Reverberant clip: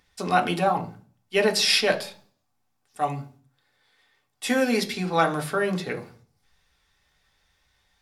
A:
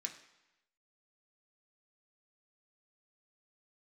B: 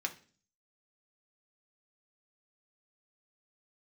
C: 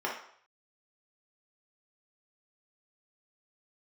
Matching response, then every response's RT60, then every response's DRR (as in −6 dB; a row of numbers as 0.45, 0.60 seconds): B; 0.95, 0.40, 0.60 seconds; 1.5, 2.5, −4.0 decibels